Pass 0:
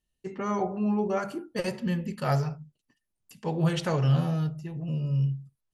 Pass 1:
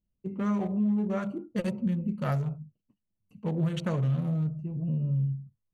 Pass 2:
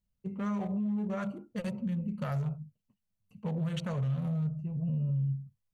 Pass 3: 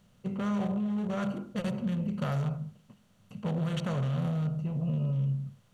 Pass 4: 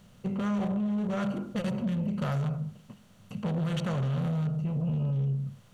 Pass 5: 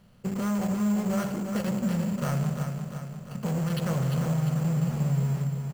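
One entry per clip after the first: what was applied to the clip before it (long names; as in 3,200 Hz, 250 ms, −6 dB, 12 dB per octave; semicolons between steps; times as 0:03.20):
adaptive Wiener filter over 25 samples; thirty-one-band graphic EQ 100 Hz +9 dB, 200 Hz +9 dB, 400 Hz −4 dB, 800 Hz −7 dB, 5,000 Hz −11 dB; downward compressor 4 to 1, threshold −25 dBFS, peak gain reduction 8 dB
brickwall limiter −25 dBFS, peak gain reduction 6.5 dB; parametric band 320 Hz −13.5 dB 0.47 octaves
compressor on every frequency bin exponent 0.6; on a send at −18 dB: convolution reverb RT60 0.40 s, pre-delay 72 ms
in parallel at +2 dB: downward compressor, threshold −38 dBFS, peak gain reduction 11 dB; on the sum: soft clipping −23 dBFS, distortion −19 dB
in parallel at −10 dB: bit reduction 5 bits; on the sum: repeating echo 349 ms, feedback 55%, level −6.5 dB; bad sample-rate conversion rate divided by 6×, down filtered, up hold; level −1.5 dB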